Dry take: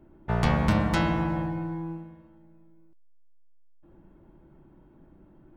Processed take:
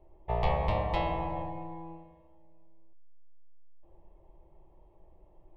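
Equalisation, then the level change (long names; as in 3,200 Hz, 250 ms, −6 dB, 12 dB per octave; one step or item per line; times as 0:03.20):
high-frequency loss of the air 440 metres
parametric band 150 Hz −13 dB 2.8 octaves
phaser with its sweep stopped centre 610 Hz, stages 4
+6.0 dB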